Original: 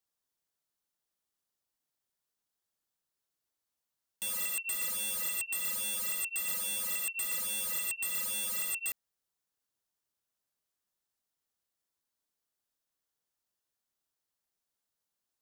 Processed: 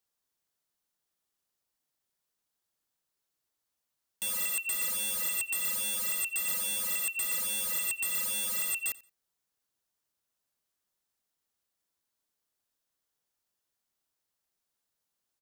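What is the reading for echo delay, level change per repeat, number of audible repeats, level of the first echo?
88 ms, -12.5 dB, 2, -21.5 dB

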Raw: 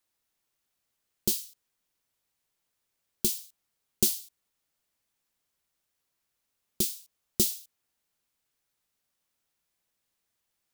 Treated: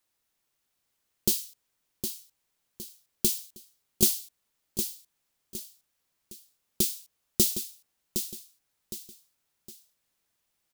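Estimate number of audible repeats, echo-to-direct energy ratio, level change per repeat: 3, -7.5 dB, -8.5 dB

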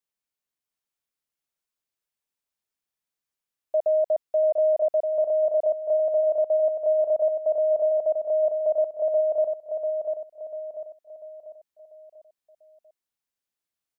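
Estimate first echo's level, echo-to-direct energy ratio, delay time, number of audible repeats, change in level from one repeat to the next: -5.0 dB, -4.0 dB, 0.693 s, 5, -7.5 dB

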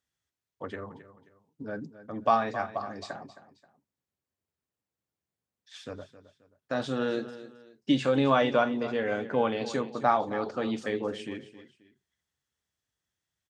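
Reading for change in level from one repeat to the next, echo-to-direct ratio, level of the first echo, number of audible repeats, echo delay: -9.5 dB, -14.0 dB, -14.5 dB, 2, 0.266 s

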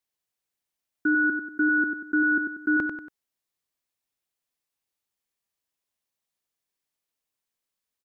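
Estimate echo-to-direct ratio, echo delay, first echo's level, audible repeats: -5.0 dB, 94 ms, -6.0 dB, 3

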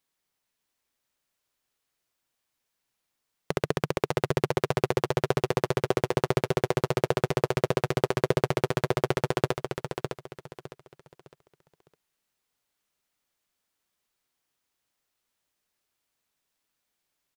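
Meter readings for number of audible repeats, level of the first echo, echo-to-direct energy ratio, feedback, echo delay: 3, -6.5 dB, -6.0 dB, 30%, 0.608 s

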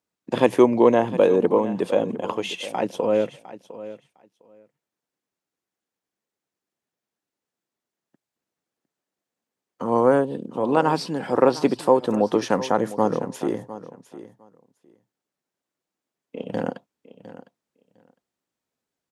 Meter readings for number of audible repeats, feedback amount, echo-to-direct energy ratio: 2, 15%, -15.5 dB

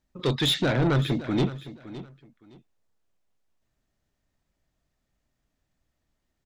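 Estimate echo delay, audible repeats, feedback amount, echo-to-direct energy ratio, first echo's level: 0.564 s, 2, 22%, -15.0 dB, -15.0 dB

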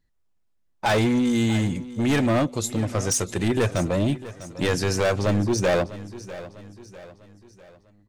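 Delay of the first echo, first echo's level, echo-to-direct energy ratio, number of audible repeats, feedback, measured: 0.649 s, -16.0 dB, -15.0 dB, 3, 46%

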